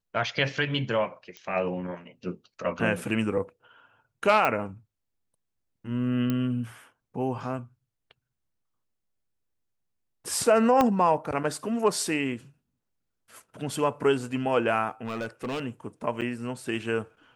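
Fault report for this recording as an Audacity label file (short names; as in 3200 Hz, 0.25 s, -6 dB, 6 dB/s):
1.370000	1.370000	pop -25 dBFS
4.450000	4.450000	pop -12 dBFS
6.300000	6.300000	pop -15 dBFS
10.810000	10.810000	pop -9 dBFS
15.040000	15.610000	clipped -28 dBFS
16.210000	16.220000	gap 7.7 ms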